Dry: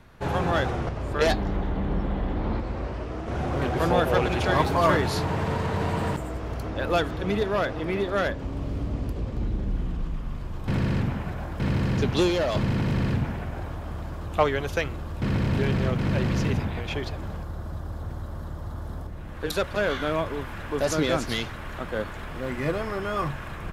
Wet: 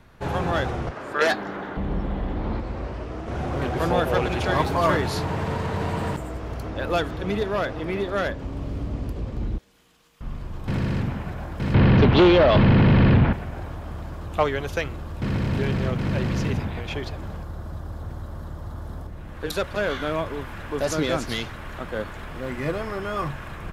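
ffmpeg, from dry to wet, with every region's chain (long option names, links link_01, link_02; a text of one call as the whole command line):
ffmpeg -i in.wav -filter_complex "[0:a]asettb=1/sr,asplit=3[link_01][link_02][link_03];[link_01]atrim=end=0.914[link_04];[link_02]atrim=start=0.91:end=1.77,asetpts=PTS-STARTPTS,afade=type=in:duration=0.004:curve=qsin,afade=type=out:start_time=0.856:duration=0.004:curve=qsin,highpass=250,equalizer=frequency=1500:width=1.8:gain=8.5[link_05];[link_03]atrim=start=1.766[link_06];[link_04][link_05]acrossfade=duration=0.004:curve1=hsin:curve2=qsin[link_07];[link_07][link_06]acrossfade=duration=0.004:curve1=qsin:curve2=hsin,asettb=1/sr,asplit=3[link_08][link_09][link_10];[link_08]atrim=end=9.584[link_11];[link_09]atrim=start=9.58:end=10.21,asetpts=PTS-STARTPTS,afade=type=in:duration=0.004:curve=qsin,afade=type=out:start_time=0.626:duration=0.004:curve=qsin,aderivative,aeval=exprs='val(0)+0.000355*sin(2*PI*470*n/s)':channel_layout=same[link_12];[link_10]atrim=start=10.206[link_13];[link_11][link_12]acrossfade=duration=0.004:curve1=hsin:curve2=qsin[link_14];[link_14][link_13]acrossfade=duration=0.004:curve1=qsin:curve2=hsin,asettb=1/sr,asplit=3[link_15][link_16][link_17];[link_15]atrim=end=11.744[link_18];[link_16]atrim=start=11.74:end=13.33,asetpts=PTS-STARTPTS,afade=type=in:duration=0.004:curve=qsin,afade=type=out:start_time=1.586:duration=0.004:curve=qsin,aeval=exprs='0.299*sin(PI/2*2.24*val(0)/0.299)':channel_layout=same,lowpass=frequency=3700:width=0.5412,lowpass=frequency=3700:width=1.3066[link_19];[link_17]atrim=start=13.326[link_20];[link_18][link_19]acrossfade=duration=0.004:curve1=hsin:curve2=qsin[link_21];[link_21][link_20]acrossfade=duration=0.004:curve1=qsin:curve2=hsin" out.wav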